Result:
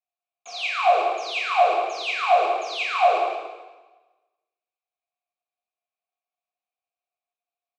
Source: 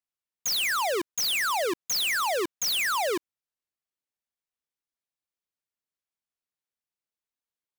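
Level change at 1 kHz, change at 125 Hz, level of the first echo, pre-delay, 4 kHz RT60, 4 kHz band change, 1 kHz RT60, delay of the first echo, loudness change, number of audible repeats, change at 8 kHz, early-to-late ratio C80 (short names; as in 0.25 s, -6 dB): +10.5 dB, n/a, -8.0 dB, 8 ms, 1.1 s, -3.5 dB, 1.2 s, 0.173 s, +4.0 dB, 1, -15.0 dB, 1.5 dB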